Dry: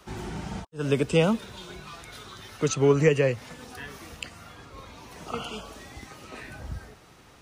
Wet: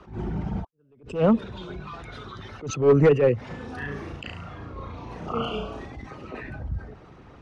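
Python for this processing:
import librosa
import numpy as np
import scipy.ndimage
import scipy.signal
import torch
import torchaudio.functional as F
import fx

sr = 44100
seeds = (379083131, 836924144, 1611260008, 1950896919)

y = fx.envelope_sharpen(x, sr, power=1.5)
y = np.clip(y, -10.0 ** (-17.0 / 20.0), 10.0 ** (-17.0 / 20.0))
y = fx.spacing_loss(y, sr, db_at_10k=20)
y = fx.room_flutter(y, sr, wall_m=6.0, rt60_s=0.47, at=(3.48, 5.86), fade=0.02)
y = fx.attack_slew(y, sr, db_per_s=150.0)
y = y * librosa.db_to_amplitude(6.5)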